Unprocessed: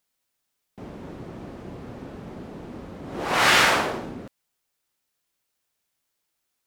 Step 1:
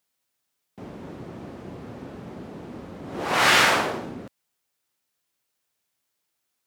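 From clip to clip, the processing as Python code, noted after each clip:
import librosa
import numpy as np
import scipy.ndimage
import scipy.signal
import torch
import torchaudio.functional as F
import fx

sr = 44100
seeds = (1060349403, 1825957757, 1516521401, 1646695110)

y = scipy.signal.sosfilt(scipy.signal.butter(2, 70.0, 'highpass', fs=sr, output='sos'), x)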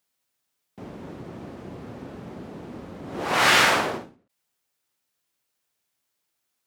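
y = fx.end_taper(x, sr, db_per_s=140.0)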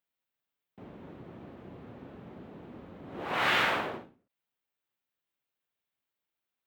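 y = fx.band_shelf(x, sr, hz=7600.0, db=-12.0, octaves=1.7)
y = y * 10.0 ** (-8.5 / 20.0)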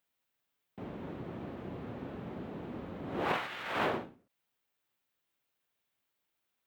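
y = fx.over_compress(x, sr, threshold_db=-33.0, ratio=-0.5)
y = y * 10.0 ** (1.0 / 20.0)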